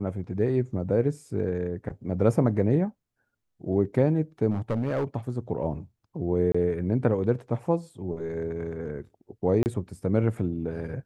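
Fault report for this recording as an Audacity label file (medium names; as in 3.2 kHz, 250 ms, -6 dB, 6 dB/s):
4.510000	5.050000	clipped -22.5 dBFS
6.520000	6.540000	dropout 25 ms
9.630000	9.660000	dropout 29 ms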